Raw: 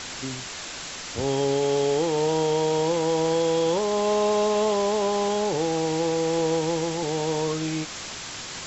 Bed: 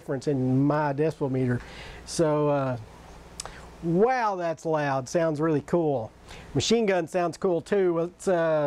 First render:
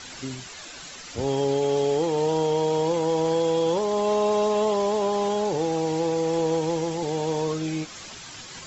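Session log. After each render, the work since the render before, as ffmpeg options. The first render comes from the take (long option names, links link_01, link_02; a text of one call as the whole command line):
ffmpeg -i in.wav -af "afftdn=noise_reduction=9:noise_floor=-36" out.wav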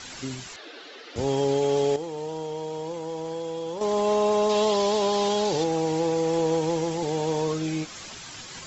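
ffmpeg -i in.wav -filter_complex "[0:a]asettb=1/sr,asplit=3[link_01][link_02][link_03];[link_01]atrim=end=0.564[link_04];[link_02]atrim=start=0.56:end=1.16,asetpts=PTS-STARTPTS,afade=type=in:duration=0.004:curve=qsin,afade=type=out:start_time=0.596:duration=0.004:curve=qsin,highpass=frequency=290:width=0.5412,highpass=frequency=290:width=1.3066,equalizer=frequency=310:width_type=q:width=4:gain=6,equalizer=frequency=440:width_type=q:width=4:gain=10,equalizer=frequency=1000:width_type=q:width=4:gain=-5,equalizer=frequency=2400:width_type=q:width=4:gain=-4,lowpass=frequency=4100:width=0.5412,lowpass=frequency=4100:width=1.3066[link_05];[link_03]atrim=start=1.156[link_06];[link_04][link_05]acrossfade=duration=0.004:curve1=hsin:curve2=qsin[link_07];[link_07][link_06]acrossfade=duration=0.004:curve1=qsin:curve2=hsin,asettb=1/sr,asplit=3[link_08][link_09][link_10];[link_08]atrim=end=4.494[link_11];[link_09]atrim=start=4.49:end=5.64,asetpts=PTS-STARTPTS,afade=type=in:duration=0.004:curve=qsin,afade=type=out:start_time=1.146:duration=0.004:curve=qsin,equalizer=frequency=4200:width_type=o:width=1.3:gain=9[link_12];[link_10]atrim=start=5.636[link_13];[link_11][link_12]acrossfade=duration=0.004:curve1=hsin:curve2=qsin[link_14];[link_14][link_13]acrossfade=duration=0.004:curve1=qsin:curve2=hsin,asplit=3[link_15][link_16][link_17];[link_15]atrim=end=1.962[link_18];[link_16]atrim=start=1.958:end=3.812,asetpts=PTS-STARTPTS,volume=-9.5dB[link_19];[link_17]atrim=start=3.808[link_20];[link_18][link_19]acrossfade=duration=0.004:curve1=hsin:curve2=hsin[link_21];[link_21][link_20]acrossfade=duration=0.004:curve1=hsin:curve2=hsin" out.wav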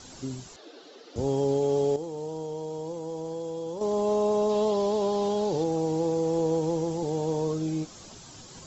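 ffmpeg -i in.wav -filter_complex "[0:a]acrossover=split=3600[link_01][link_02];[link_02]acompressor=threshold=-42dB:ratio=4:attack=1:release=60[link_03];[link_01][link_03]amix=inputs=2:normalize=0,equalizer=frequency=2100:width_type=o:width=1.9:gain=-14.5" out.wav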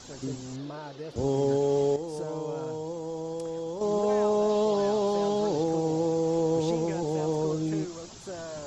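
ffmpeg -i in.wav -i bed.wav -filter_complex "[1:a]volume=-15.5dB[link_01];[0:a][link_01]amix=inputs=2:normalize=0" out.wav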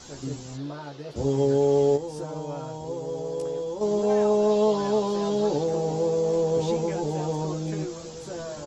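ffmpeg -i in.wav -filter_complex "[0:a]asplit=2[link_01][link_02];[link_02]adelay=14,volume=-3dB[link_03];[link_01][link_03]amix=inputs=2:normalize=0,asplit=2[link_04][link_05];[link_05]adelay=1633,volume=-16dB,highshelf=frequency=4000:gain=-36.7[link_06];[link_04][link_06]amix=inputs=2:normalize=0" out.wav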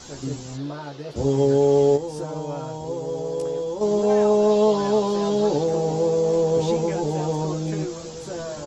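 ffmpeg -i in.wav -af "volume=3.5dB" out.wav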